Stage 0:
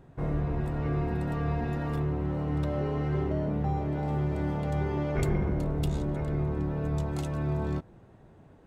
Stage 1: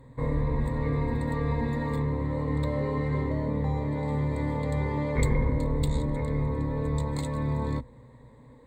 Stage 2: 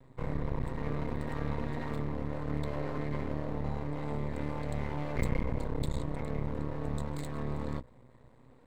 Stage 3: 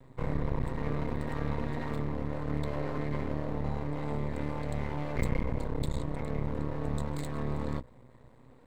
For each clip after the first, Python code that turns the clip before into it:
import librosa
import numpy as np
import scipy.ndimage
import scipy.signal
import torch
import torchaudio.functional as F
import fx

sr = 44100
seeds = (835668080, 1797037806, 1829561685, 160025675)

y1 = fx.ripple_eq(x, sr, per_octave=1.0, db=17)
y2 = np.maximum(y1, 0.0)
y2 = y2 * librosa.db_to_amplitude(-3.0)
y3 = fx.rider(y2, sr, range_db=10, speed_s=2.0)
y3 = y3 * librosa.db_to_amplitude(1.5)